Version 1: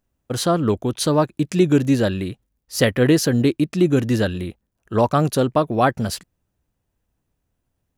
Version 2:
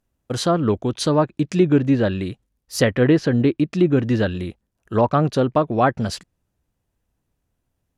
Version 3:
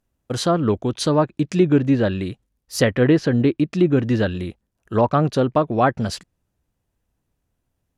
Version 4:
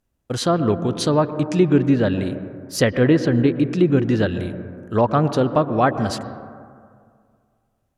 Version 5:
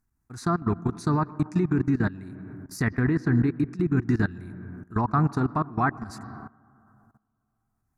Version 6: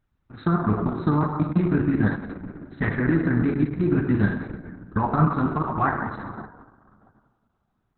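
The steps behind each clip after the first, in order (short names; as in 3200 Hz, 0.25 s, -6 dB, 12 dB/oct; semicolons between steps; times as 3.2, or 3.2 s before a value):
treble ducked by the level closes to 2500 Hz, closed at -13 dBFS
nothing audible
on a send at -10 dB: air absorption 230 m + reverb RT60 2.1 s, pre-delay 0.103 s
level quantiser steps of 19 dB; fixed phaser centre 1300 Hz, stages 4; gain +1.5 dB
plate-style reverb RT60 1.2 s, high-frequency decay 0.6×, DRR 2 dB; gain +2 dB; Opus 6 kbps 48000 Hz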